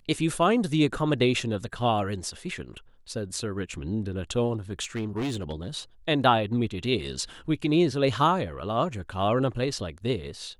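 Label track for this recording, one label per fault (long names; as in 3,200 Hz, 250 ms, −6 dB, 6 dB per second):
4.830000	5.670000	clipping −26 dBFS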